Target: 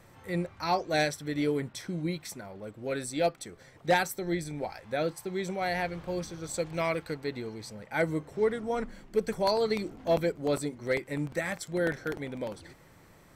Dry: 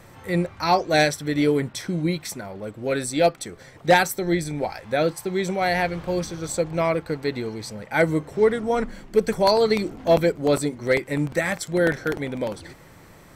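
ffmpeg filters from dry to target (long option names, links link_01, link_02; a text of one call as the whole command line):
ffmpeg -i in.wav -filter_complex "[0:a]asplit=3[link_01][link_02][link_03];[link_01]afade=type=out:start_time=6.53:duration=0.02[link_04];[link_02]adynamicequalizer=threshold=0.0141:dfrequency=1500:dqfactor=0.7:tfrequency=1500:tqfactor=0.7:attack=5:release=100:ratio=0.375:range=3.5:mode=boostabove:tftype=highshelf,afade=type=in:start_time=6.53:duration=0.02,afade=type=out:start_time=7.13:duration=0.02[link_05];[link_03]afade=type=in:start_time=7.13:duration=0.02[link_06];[link_04][link_05][link_06]amix=inputs=3:normalize=0,volume=-8.5dB" out.wav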